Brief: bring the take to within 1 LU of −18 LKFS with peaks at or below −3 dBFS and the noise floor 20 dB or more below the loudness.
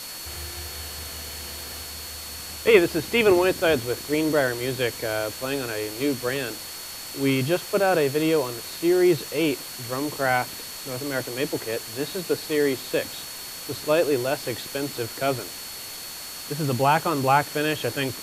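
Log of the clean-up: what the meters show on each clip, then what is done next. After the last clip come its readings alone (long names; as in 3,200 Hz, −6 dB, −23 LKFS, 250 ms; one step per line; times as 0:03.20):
interfering tone 4,400 Hz; level of the tone −40 dBFS; background noise floor −37 dBFS; target noise floor −45 dBFS; integrated loudness −25.0 LKFS; sample peak −4.5 dBFS; target loudness −18.0 LKFS
→ notch filter 4,400 Hz, Q 30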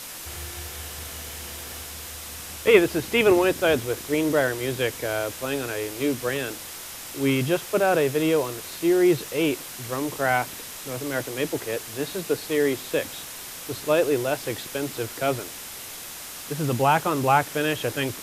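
interfering tone none found; background noise floor −38 dBFS; target noise floor −45 dBFS
→ broadband denoise 7 dB, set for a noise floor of −38 dBFS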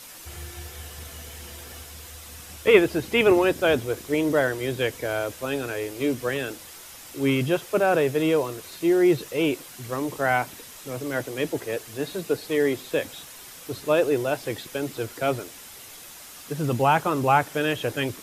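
background noise floor −44 dBFS; target noise floor −45 dBFS
→ broadband denoise 6 dB, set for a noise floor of −44 dBFS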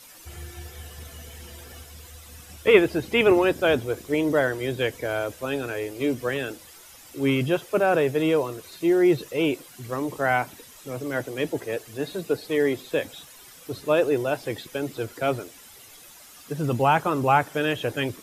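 background noise floor −48 dBFS; integrated loudness −24.5 LKFS; sample peak −4.5 dBFS; target loudness −18.0 LKFS
→ level +6.5 dB
brickwall limiter −3 dBFS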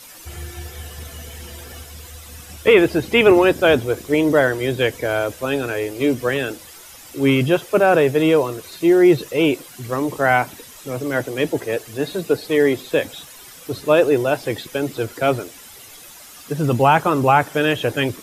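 integrated loudness −18.5 LKFS; sample peak −3.0 dBFS; background noise floor −42 dBFS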